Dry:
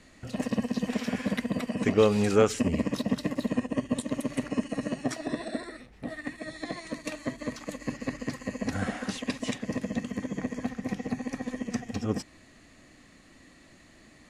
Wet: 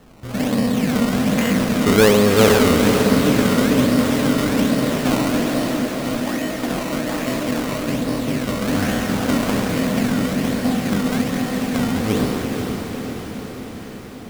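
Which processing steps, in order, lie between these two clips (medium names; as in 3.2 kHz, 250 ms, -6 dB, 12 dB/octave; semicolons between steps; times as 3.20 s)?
spectral sustain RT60 2.26 s; 7.83–8.49 s: low-pass 1 kHz; decimation with a swept rate 18×, swing 100% 1.2 Hz; echo that smears into a reverb 482 ms, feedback 66%, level -6 dB; trim +5.5 dB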